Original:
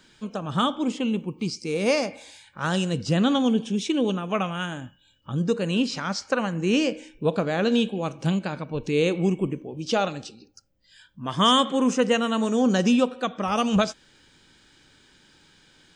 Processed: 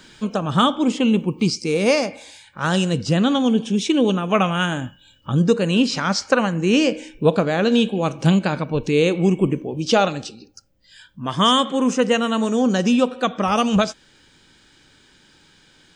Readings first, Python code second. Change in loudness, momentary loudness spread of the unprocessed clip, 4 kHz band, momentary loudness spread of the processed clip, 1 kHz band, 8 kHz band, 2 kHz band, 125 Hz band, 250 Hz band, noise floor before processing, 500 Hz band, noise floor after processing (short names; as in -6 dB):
+5.0 dB, 10 LU, +4.5 dB, 7 LU, +5.0 dB, +5.0 dB, +5.5 dB, +6.5 dB, +5.0 dB, -59 dBFS, +5.0 dB, -55 dBFS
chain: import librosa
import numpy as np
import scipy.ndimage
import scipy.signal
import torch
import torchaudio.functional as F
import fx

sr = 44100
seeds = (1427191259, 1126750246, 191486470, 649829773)

y = fx.rider(x, sr, range_db=4, speed_s=0.5)
y = F.gain(torch.from_numpy(y), 5.5).numpy()